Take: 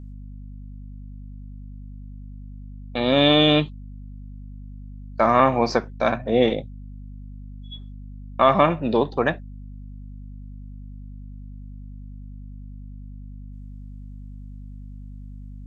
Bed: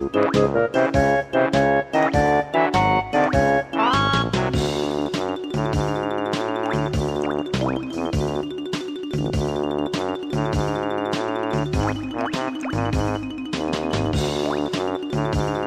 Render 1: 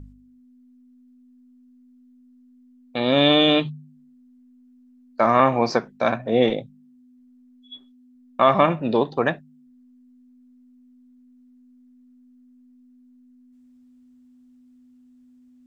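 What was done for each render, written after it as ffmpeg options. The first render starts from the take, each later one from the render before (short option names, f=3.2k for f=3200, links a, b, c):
-af "bandreject=f=50:t=h:w=4,bandreject=f=100:t=h:w=4,bandreject=f=150:t=h:w=4,bandreject=f=200:t=h:w=4"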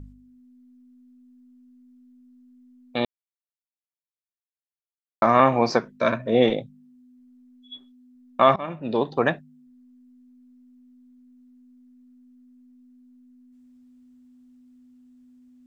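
-filter_complex "[0:a]asettb=1/sr,asplit=3[a][b][c];[a]atrim=end=5.814[d];[b]atrim=start=5.81:end=6.35,asetpts=PTS-STARTPTS,afade=t=in:d=0.004:c=qsin,afade=t=out:st=0.536:d=0.004:c=qsin,asuperstop=centerf=780:order=8:qfactor=3.8[e];[c]atrim=start=6.346[f];[d][e]acrossfade=d=0.004:c1=hsin:c2=qsin[g];[g][f]acrossfade=d=0.004:c1=qsin:c2=hsin,asplit=4[h][i][j][k];[h]atrim=end=3.05,asetpts=PTS-STARTPTS,afade=t=out:st=3.046:d=0.004:c=hsin[l];[i]atrim=start=3.05:end=5.22,asetpts=PTS-STARTPTS,volume=0[m];[j]atrim=start=5.22:end=8.56,asetpts=PTS-STARTPTS,afade=t=in:d=0.004:c=hsin,afade=t=out:st=3.336:d=0.004:c=hsin:silence=0.0668344[n];[k]atrim=start=8.56,asetpts=PTS-STARTPTS,afade=t=in:d=0.63:silence=0.0668344[o];[l][m][n][o]concat=n=4:v=0:a=1"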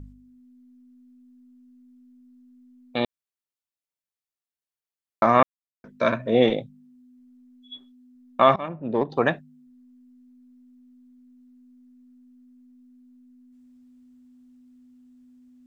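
-filter_complex "[0:a]asettb=1/sr,asplit=3[a][b][c];[a]atrim=end=8.684[d];[b]atrim=start=8.68:end=9.1,asetpts=PTS-STARTPTS,afade=t=in:d=0.004:c=qsin,afade=t=out:st=0.416:d=0.004:c=qsin,adynamicsmooth=sensitivity=0.5:basefreq=1.1k[e];[c]atrim=start=9.096[f];[d][e]acrossfade=d=0.004:c1=hsin:c2=qsin[g];[g][f]acrossfade=d=0.004:c1=qsin:c2=hsin,asplit=3[h][i][j];[h]atrim=end=5.43,asetpts=PTS-STARTPTS,afade=t=out:st=5.426:d=0.004:c=hsin[k];[i]atrim=start=5.43:end=5.84,asetpts=PTS-STARTPTS,volume=0[l];[j]atrim=start=5.84,asetpts=PTS-STARTPTS,afade=t=in:d=0.004:c=hsin[m];[k][l][m]concat=n=3:v=0:a=1"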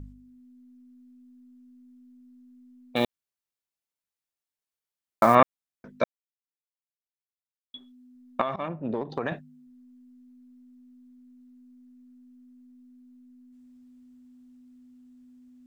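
-filter_complex "[0:a]asettb=1/sr,asplit=3[a][b][c];[a]atrim=end=2.964[d];[b]atrim=start=2.96:end=5.35,asetpts=PTS-STARTPTS,afade=t=in:d=0.004:c=qsin,afade=t=out:st=2.386:d=0.004:c=qsin,acrusher=bits=6:mode=log:mix=0:aa=0.000001[e];[c]atrim=start=5.346[f];[d][e]acrossfade=d=0.004:c1=hsin:c2=qsin[g];[g][f]acrossfade=d=0.004:c1=qsin:c2=hsin,asettb=1/sr,asplit=3[h][i][j];[h]atrim=end=8.414[k];[i]atrim=start=8.41:end=9.32,asetpts=PTS-STARTPTS,afade=t=in:d=0.004:c=qsin,afade=t=out:st=0.906:d=0.004:c=qsin,acompressor=threshold=-24dB:ratio=12:attack=3.2:release=140:knee=1:detection=peak[l];[j]atrim=start=9.316[m];[k][l]acrossfade=d=0.004:c1=hsin:c2=qsin[n];[n][m]acrossfade=d=0.004:c1=qsin:c2=hsin,asplit=3[o][p][q];[o]atrim=end=6.04,asetpts=PTS-STARTPTS,afade=t=out:st=6.036:d=0.004:c=hsin[r];[p]atrim=start=6.04:end=7.74,asetpts=PTS-STARTPTS,volume=0[s];[q]atrim=start=7.74,asetpts=PTS-STARTPTS,afade=t=in:d=0.004:c=hsin[t];[r][s][t]concat=n=3:v=0:a=1"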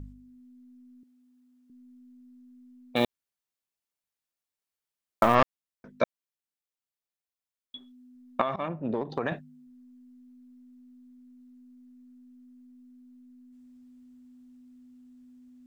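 -filter_complex "[0:a]asettb=1/sr,asplit=3[a][b][c];[a]atrim=end=1.034[d];[b]atrim=start=1.03:end=1.7,asetpts=PTS-STARTPTS,afade=t=in:d=0.004:c=qsin,afade=t=out:st=0.666:d=0.004:c=qsin,highpass=410[e];[c]atrim=start=1.696[f];[d][e]acrossfade=d=0.004:c1=hsin:c2=qsin[g];[g][f]acrossfade=d=0.004:c1=qsin:c2=hsin,asettb=1/sr,asplit=3[h][i][j];[h]atrim=end=5.234[k];[i]atrim=start=5.23:end=6,asetpts=PTS-STARTPTS,afade=t=in:d=0.004:c=qsin,afade=t=out:st=0.766:d=0.004:c=qsin,aeval=exprs='(tanh(3.98*val(0)+0.6)-tanh(0.6))/3.98':c=same[l];[j]atrim=start=5.996[m];[k][l]acrossfade=d=0.004:c1=hsin:c2=qsin[n];[n][m]acrossfade=d=0.004:c1=qsin:c2=hsin"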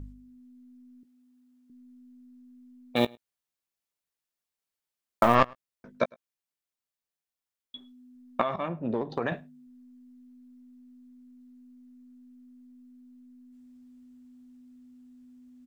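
-filter_complex "[0:a]asplit=2[a][b];[b]adelay=17,volume=-13dB[c];[a][c]amix=inputs=2:normalize=0,asplit=2[d][e];[e]adelay=105,volume=-27dB,highshelf=f=4k:g=-2.36[f];[d][f]amix=inputs=2:normalize=0"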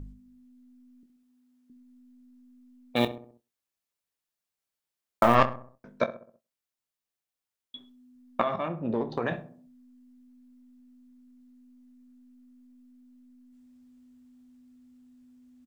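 -filter_complex "[0:a]asplit=2[a][b];[b]adelay=26,volume=-12dB[c];[a][c]amix=inputs=2:normalize=0,asplit=2[d][e];[e]adelay=65,lowpass=f=1.2k:p=1,volume=-12.5dB,asplit=2[f][g];[g]adelay=65,lowpass=f=1.2k:p=1,volume=0.51,asplit=2[h][i];[i]adelay=65,lowpass=f=1.2k:p=1,volume=0.51,asplit=2[j][k];[k]adelay=65,lowpass=f=1.2k:p=1,volume=0.51,asplit=2[l][m];[m]adelay=65,lowpass=f=1.2k:p=1,volume=0.51[n];[d][f][h][j][l][n]amix=inputs=6:normalize=0"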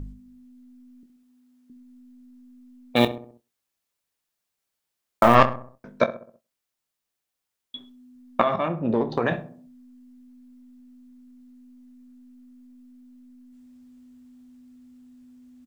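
-af "volume=6dB,alimiter=limit=-2dB:level=0:latency=1"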